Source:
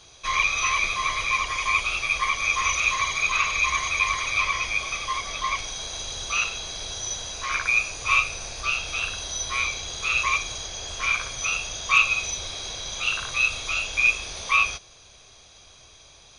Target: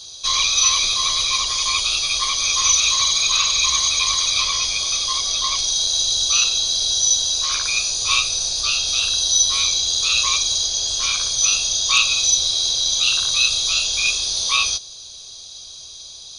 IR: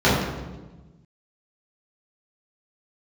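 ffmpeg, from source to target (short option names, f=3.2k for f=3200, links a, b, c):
-af "highshelf=f=3k:t=q:w=3:g=11"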